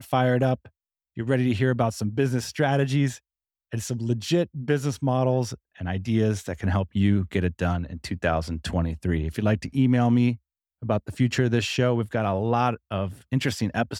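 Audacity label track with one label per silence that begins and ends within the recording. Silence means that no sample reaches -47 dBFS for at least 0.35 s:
0.680000	1.170000	silence
3.180000	3.720000	silence
10.370000	10.820000	silence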